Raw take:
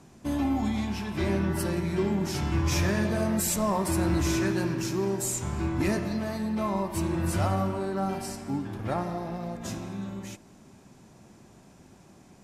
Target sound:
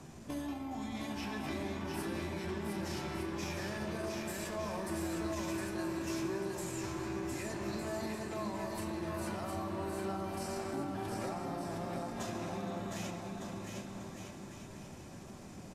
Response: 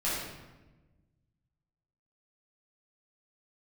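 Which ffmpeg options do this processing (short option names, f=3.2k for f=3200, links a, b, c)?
-filter_complex "[0:a]acompressor=threshold=-34dB:ratio=10,atempo=0.79,acrossover=split=290|3700[a][b][c];[a]acompressor=threshold=-50dB:ratio=4[d];[b]acompressor=threshold=-42dB:ratio=4[e];[c]acompressor=threshold=-52dB:ratio=4[f];[d][e][f]amix=inputs=3:normalize=0,aecho=1:1:710|1207|1555|1798|1969:0.631|0.398|0.251|0.158|0.1,asplit=2[g][h];[1:a]atrim=start_sample=2205,asetrate=41013,aresample=44100[i];[h][i]afir=irnorm=-1:irlink=0,volume=-15dB[j];[g][j]amix=inputs=2:normalize=0,volume=1dB"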